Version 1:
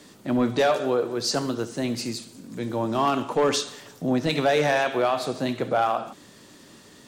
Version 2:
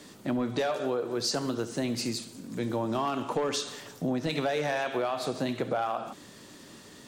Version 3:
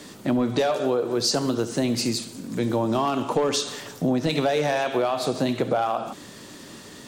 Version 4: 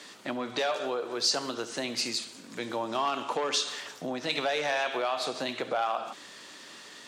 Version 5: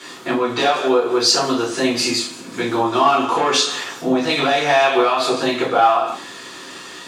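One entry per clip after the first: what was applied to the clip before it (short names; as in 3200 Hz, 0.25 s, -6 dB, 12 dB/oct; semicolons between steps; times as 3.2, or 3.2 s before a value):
compressor, threshold -26 dBFS, peak gain reduction 9 dB
dynamic EQ 1700 Hz, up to -4 dB, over -43 dBFS, Q 1.2; gain +7 dB
band-pass 2500 Hz, Q 0.51
reverb RT60 0.30 s, pre-delay 3 ms, DRR -8 dB; gain +2.5 dB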